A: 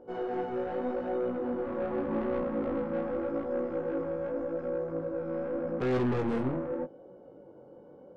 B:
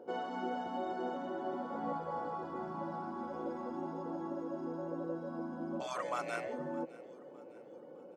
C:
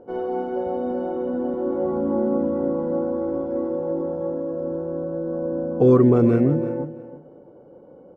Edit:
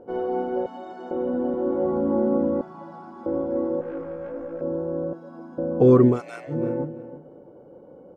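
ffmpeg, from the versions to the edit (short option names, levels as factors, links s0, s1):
-filter_complex "[1:a]asplit=4[s0][s1][s2][s3];[2:a]asplit=6[s4][s5][s6][s7][s8][s9];[s4]atrim=end=0.662[s10];[s0]atrim=start=0.658:end=1.112[s11];[s5]atrim=start=1.108:end=2.612[s12];[s1]atrim=start=2.608:end=3.262[s13];[s6]atrim=start=3.258:end=3.812[s14];[0:a]atrim=start=3.808:end=4.612[s15];[s7]atrim=start=4.608:end=5.132[s16];[s2]atrim=start=5.128:end=5.582[s17];[s8]atrim=start=5.578:end=6.21[s18];[s3]atrim=start=6.05:end=6.63[s19];[s9]atrim=start=6.47[s20];[s10][s11]acrossfade=d=0.004:c1=hsin:c2=hsin[s21];[s21][s12]acrossfade=d=0.004:c1=hsin:c2=hsin[s22];[s22][s13]acrossfade=d=0.004:c1=hsin:c2=hsin[s23];[s23][s14]acrossfade=d=0.004:c1=hsin:c2=hsin[s24];[s24][s15]acrossfade=d=0.004:c1=hsin:c2=hsin[s25];[s25][s16]acrossfade=d=0.004:c1=hsin:c2=hsin[s26];[s26][s17]acrossfade=d=0.004:c1=hsin:c2=hsin[s27];[s27][s18]acrossfade=d=0.004:c1=hsin:c2=hsin[s28];[s28][s19]acrossfade=d=0.16:c1=tri:c2=tri[s29];[s29][s20]acrossfade=d=0.16:c1=tri:c2=tri"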